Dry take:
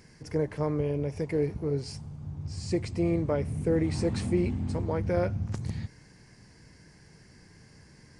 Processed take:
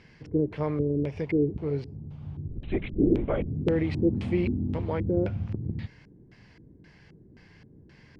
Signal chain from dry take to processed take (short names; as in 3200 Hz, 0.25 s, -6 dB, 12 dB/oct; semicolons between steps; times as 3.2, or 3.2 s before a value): 2.48–3.46 LPC vocoder at 8 kHz whisper; LFO low-pass square 1.9 Hz 340–3100 Hz